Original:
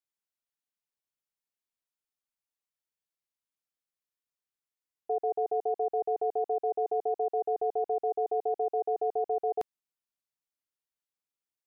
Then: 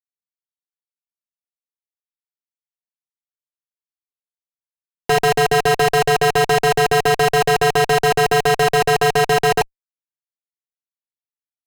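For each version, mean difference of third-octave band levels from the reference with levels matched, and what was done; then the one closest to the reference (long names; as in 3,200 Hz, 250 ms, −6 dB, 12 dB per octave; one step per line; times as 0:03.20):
23.0 dB: notch filter 840 Hz, Q 12
fuzz pedal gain 62 dB, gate −53 dBFS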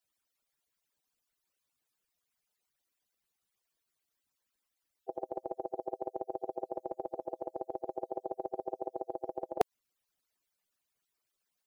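8.0 dB: harmonic-percussive split with one part muted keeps percussive
in parallel at +2.5 dB: output level in coarse steps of 15 dB
on the sum: level +8.5 dB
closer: second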